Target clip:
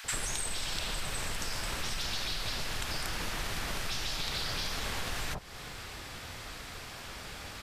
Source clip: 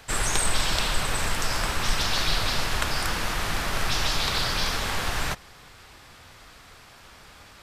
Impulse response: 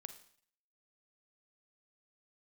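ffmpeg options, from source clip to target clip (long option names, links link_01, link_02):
-filter_complex "[0:a]acrossover=split=2200[link_01][link_02];[link_01]alimiter=limit=-20.5dB:level=0:latency=1[link_03];[link_03][link_02]amix=inputs=2:normalize=0,acrossover=split=1100[link_04][link_05];[link_04]adelay=40[link_06];[link_06][link_05]amix=inputs=2:normalize=0,acompressor=threshold=-39dB:ratio=5,volume=6dB"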